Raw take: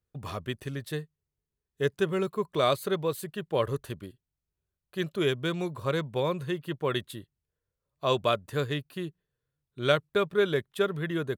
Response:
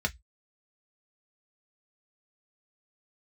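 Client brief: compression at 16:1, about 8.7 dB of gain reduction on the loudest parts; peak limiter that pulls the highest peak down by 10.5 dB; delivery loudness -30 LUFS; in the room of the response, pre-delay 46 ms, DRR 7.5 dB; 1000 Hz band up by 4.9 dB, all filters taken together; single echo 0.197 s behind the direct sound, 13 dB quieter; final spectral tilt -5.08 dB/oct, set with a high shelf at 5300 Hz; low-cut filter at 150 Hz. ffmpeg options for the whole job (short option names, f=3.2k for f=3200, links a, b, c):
-filter_complex "[0:a]highpass=150,equalizer=f=1k:t=o:g=6,highshelf=f=5.3k:g=4,acompressor=threshold=-25dB:ratio=16,alimiter=limit=-24dB:level=0:latency=1,aecho=1:1:197:0.224,asplit=2[a][b];[1:a]atrim=start_sample=2205,adelay=46[c];[b][c]afir=irnorm=-1:irlink=0,volume=-14.5dB[d];[a][d]amix=inputs=2:normalize=0,volume=6dB"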